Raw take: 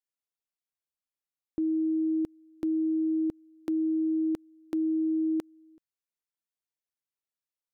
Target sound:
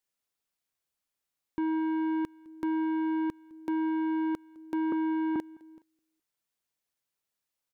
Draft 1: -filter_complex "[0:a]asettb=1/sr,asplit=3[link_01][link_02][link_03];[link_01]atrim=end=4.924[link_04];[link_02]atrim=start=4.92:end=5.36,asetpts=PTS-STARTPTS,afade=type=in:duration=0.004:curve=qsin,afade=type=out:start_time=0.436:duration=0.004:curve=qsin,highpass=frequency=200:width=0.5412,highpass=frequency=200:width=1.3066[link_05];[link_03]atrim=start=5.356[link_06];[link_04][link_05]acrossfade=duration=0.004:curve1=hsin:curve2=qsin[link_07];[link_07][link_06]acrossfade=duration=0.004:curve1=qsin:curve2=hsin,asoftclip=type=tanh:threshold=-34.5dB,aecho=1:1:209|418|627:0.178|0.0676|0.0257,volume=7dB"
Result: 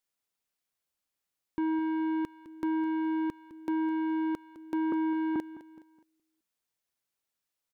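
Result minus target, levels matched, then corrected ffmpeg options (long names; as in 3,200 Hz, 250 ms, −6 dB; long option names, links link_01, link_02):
echo-to-direct +9 dB
-filter_complex "[0:a]asettb=1/sr,asplit=3[link_01][link_02][link_03];[link_01]atrim=end=4.924[link_04];[link_02]atrim=start=4.92:end=5.36,asetpts=PTS-STARTPTS,afade=type=in:duration=0.004:curve=qsin,afade=type=out:start_time=0.436:duration=0.004:curve=qsin,highpass=frequency=200:width=0.5412,highpass=frequency=200:width=1.3066[link_05];[link_03]atrim=start=5.356[link_06];[link_04][link_05]acrossfade=duration=0.004:curve1=hsin:curve2=qsin[link_07];[link_07][link_06]acrossfade=duration=0.004:curve1=qsin:curve2=hsin,asoftclip=type=tanh:threshold=-34.5dB,aecho=1:1:209|418:0.0631|0.024,volume=7dB"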